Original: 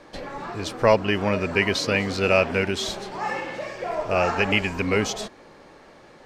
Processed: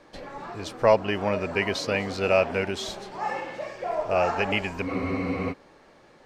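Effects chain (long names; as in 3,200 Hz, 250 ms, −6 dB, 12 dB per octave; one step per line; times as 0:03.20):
dynamic equaliser 710 Hz, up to +6 dB, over −36 dBFS, Q 1.2
frozen spectrum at 0:04.91, 0.60 s
level −5.5 dB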